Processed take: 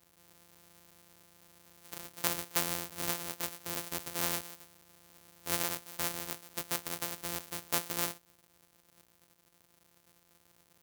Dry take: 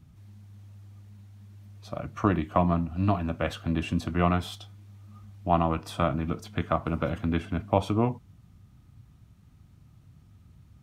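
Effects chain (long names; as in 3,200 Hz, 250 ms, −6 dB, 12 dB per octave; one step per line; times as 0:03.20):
samples sorted by size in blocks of 256 samples
RIAA equalisation recording
level −11 dB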